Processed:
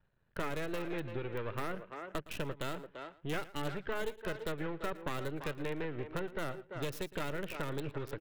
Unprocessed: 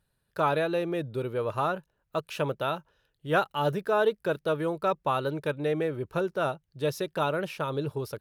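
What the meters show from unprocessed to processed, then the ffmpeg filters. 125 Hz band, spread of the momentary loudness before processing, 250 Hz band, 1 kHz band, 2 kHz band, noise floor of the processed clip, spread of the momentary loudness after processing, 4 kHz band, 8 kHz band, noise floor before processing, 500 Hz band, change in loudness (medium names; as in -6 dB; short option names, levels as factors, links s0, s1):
-7.5 dB, 7 LU, -7.5 dB, -13.0 dB, -7.0 dB, -68 dBFS, 3 LU, -6.5 dB, no reading, -77 dBFS, -11.5 dB, -10.5 dB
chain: -filter_complex "[0:a]aeval=exprs='if(lt(val(0),0),0.251*val(0),val(0))':c=same,acrossover=split=3000[s0][s1];[s1]acrusher=bits=4:dc=4:mix=0:aa=0.000001[s2];[s0][s2]amix=inputs=2:normalize=0,asplit=2[s3][s4];[s4]adelay=340,highpass=300,lowpass=3400,asoftclip=type=hard:threshold=0.0944,volume=0.251[s5];[s3][s5]amix=inputs=2:normalize=0,acrossover=split=480|1500[s6][s7][s8];[s6]acompressor=threshold=0.00891:ratio=4[s9];[s7]acompressor=threshold=0.00112:ratio=4[s10];[s8]acompressor=threshold=0.00501:ratio=4[s11];[s9][s10][s11]amix=inputs=3:normalize=0,asplit=2[s12][s13];[s13]aecho=0:1:113:0.119[s14];[s12][s14]amix=inputs=2:normalize=0,volume=1.68"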